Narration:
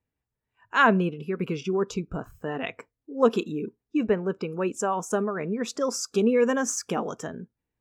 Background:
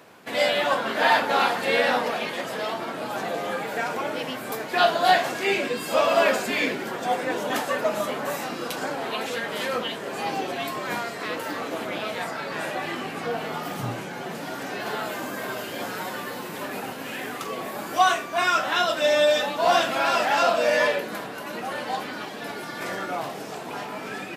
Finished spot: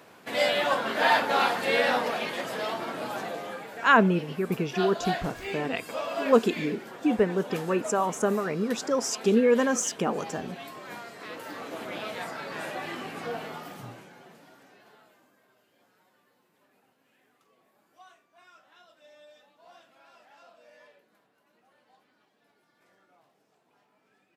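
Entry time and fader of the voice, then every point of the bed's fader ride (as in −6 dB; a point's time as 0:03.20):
3.10 s, +0.5 dB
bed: 0:03.06 −2.5 dB
0:03.75 −12 dB
0:11.02 −12 dB
0:11.98 −5.5 dB
0:13.35 −5.5 dB
0:15.47 −35 dB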